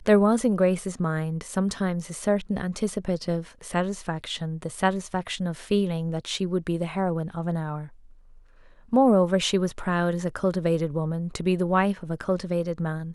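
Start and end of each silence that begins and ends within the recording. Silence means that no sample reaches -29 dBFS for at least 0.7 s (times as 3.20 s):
7.82–8.93 s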